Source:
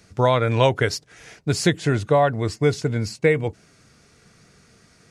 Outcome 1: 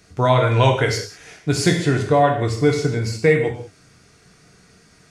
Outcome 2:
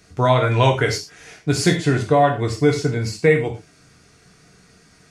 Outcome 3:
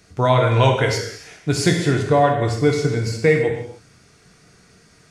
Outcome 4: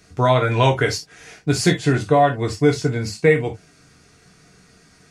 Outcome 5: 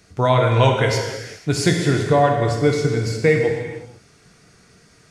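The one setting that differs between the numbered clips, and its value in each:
reverb whose tail is shaped and stops, gate: 220, 140, 330, 90, 520 milliseconds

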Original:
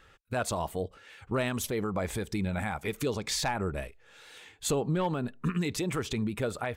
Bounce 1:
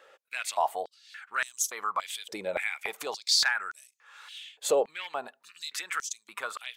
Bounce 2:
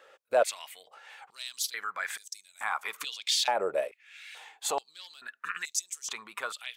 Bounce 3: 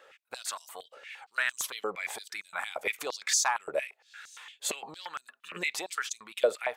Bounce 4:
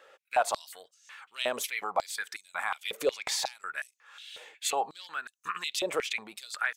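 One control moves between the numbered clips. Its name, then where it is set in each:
high-pass on a step sequencer, speed: 3.5, 2.3, 8.7, 5.5 Hertz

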